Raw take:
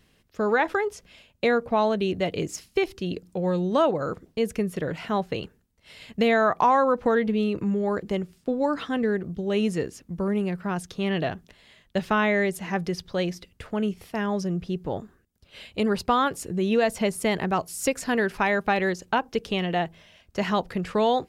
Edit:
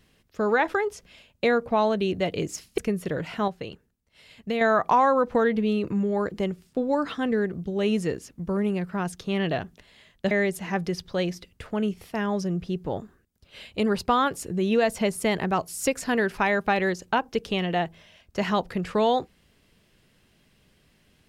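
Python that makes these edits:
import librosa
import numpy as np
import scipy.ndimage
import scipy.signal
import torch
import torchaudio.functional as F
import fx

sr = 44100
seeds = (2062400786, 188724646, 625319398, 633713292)

y = fx.edit(x, sr, fx.cut(start_s=2.78, length_s=1.71),
    fx.clip_gain(start_s=5.19, length_s=1.13, db=-6.0),
    fx.cut(start_s=12.02, length_s=0.29), tone=tone)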